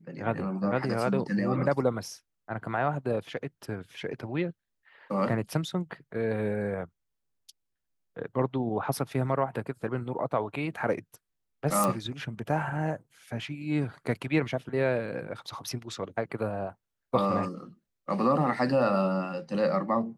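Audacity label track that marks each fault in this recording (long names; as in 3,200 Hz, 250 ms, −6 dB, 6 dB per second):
11.840000	11.840000	click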